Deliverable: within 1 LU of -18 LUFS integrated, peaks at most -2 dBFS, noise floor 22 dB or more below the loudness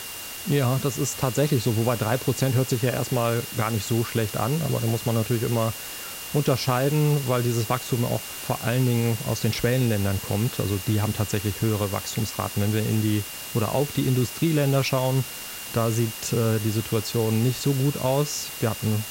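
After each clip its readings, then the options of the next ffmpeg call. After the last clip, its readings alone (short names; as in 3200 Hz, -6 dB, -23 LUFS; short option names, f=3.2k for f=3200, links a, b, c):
steady tone 2800 Hz; tone level -42 dBFS; noise floor -36 dBFS; noise floor target -47 dBFS; loudness -24.5 LUFS; peak -9.5 dBFS; loudness target -18.0 LUFS
-> -af "bandreject=f=2.8k:w=30"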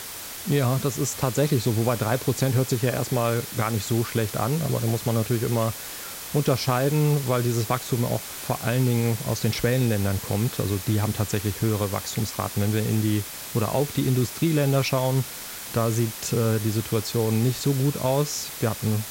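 steady tone none; noise floor -37 dBFS; noise floor target -47 dBFS
-> -af "afftdn=nr=10:nf=-37"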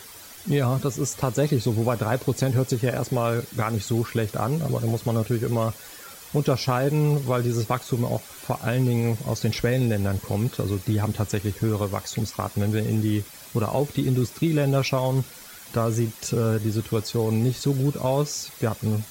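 noise floor -44 dBFS; noise floor target -47 dBFS
-> -af "afftdn=nr=6:nf=-44"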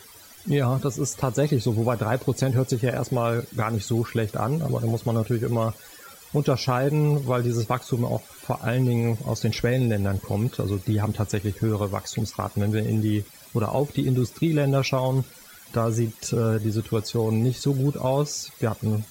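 noise floor -48 dBFS; loudness -25.0 LUFS; peak -10.0 dBFS; loudness target -18.0 LUFS
-> -af "volume=7dB"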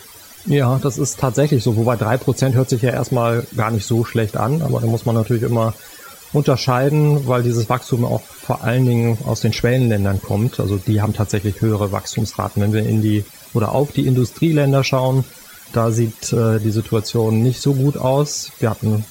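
loudness -18.0 LUFS; peak -3.0 dBFS; noise floor -41 dBFS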